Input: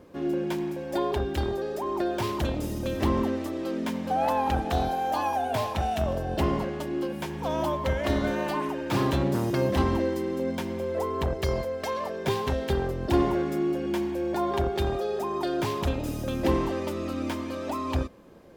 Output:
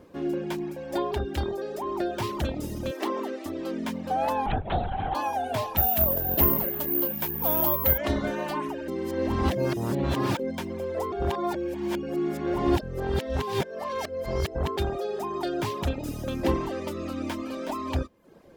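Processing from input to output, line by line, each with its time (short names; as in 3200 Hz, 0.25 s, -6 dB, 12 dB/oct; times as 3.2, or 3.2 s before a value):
2.91–3.46 HPF 310 Hz 24 dB/oct
4.46–5.15 LPC vocoder at 8 kHz whisper
5.77–7.98 careless resampling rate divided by 3×, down none, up zero stuff
8.88–10.39 reverse
11.12–14.77 reverse
16.95–17.52 echo throw 0.37 s, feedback 10%, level -7.5 dB
whole clip: reverb removal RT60 0.54 s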